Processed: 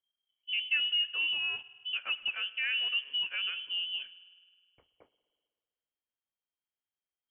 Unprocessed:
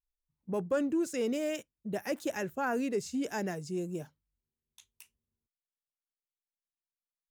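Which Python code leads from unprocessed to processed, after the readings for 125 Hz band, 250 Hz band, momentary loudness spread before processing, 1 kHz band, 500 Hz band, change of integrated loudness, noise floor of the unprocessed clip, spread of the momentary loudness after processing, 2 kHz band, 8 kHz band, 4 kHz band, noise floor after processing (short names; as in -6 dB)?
under -25 dB, under -35 dB, 9 LU, -12.5 dB, -29.0 dB, +3.5 dB, under -85 dBFS, 8 LU, +9.5 dB, under -35 dB, +21.5 dB, under -85 dBFS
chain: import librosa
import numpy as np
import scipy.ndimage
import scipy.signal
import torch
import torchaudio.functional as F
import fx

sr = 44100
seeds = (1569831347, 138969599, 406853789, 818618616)

y = fx.env_lowpass_down(x, sr, base_hz=1600.0, full_db=-31.5)
y = fx.rev_spring(y, sr, rt60_s=1.8, pass_ms=(51,), chirp_ms=65, drr_db=16.5)
y = fx.freq_invert(y, sr, carrier_hz=3200)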